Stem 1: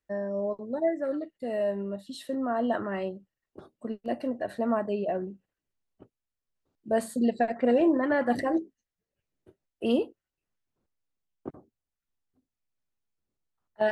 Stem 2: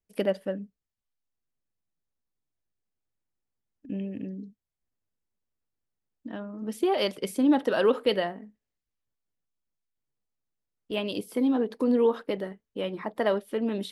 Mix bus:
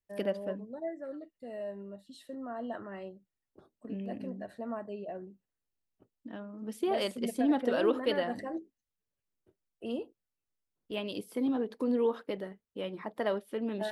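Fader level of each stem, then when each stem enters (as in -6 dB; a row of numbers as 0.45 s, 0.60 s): -11.0 dB, -6.0 dB; 0.00 s, 0.00 s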